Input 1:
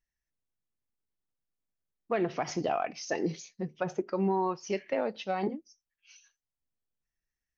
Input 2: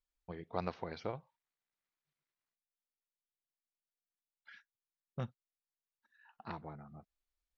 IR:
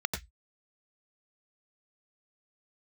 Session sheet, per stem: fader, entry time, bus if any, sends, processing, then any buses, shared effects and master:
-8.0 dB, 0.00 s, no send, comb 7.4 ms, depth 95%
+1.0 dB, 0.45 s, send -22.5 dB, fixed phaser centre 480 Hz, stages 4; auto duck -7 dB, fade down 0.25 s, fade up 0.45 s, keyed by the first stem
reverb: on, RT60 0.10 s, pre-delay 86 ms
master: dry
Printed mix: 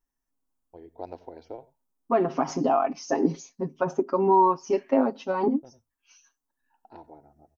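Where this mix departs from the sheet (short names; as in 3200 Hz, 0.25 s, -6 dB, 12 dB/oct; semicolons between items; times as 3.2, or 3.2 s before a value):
stem 1 -8.0 dB -> +2.5 dB; master: extra graphic EQ 125/250/500/1000/2000/4000 Hz -10/+11/-4/+9/-10/-8 dB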